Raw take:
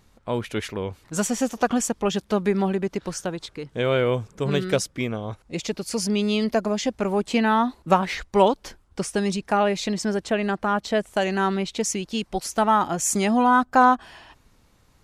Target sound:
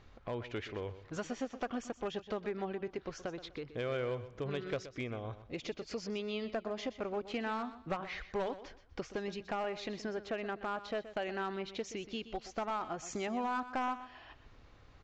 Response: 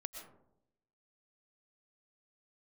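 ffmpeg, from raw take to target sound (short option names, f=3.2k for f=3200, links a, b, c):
-af "lowpass=3.5k,equalizer=f=190:w=2.3:g=-8.5,acompressor=threshold=-47dB:ratio=2,aresample=16000,aeval=exprs='clip(val(0),-1,0.0266)':c=same,aresample=44100,bandreject=f=920:w=12,aecho=1:1:124|248|372:0.211|0.0571|0.0154,volume=1dB"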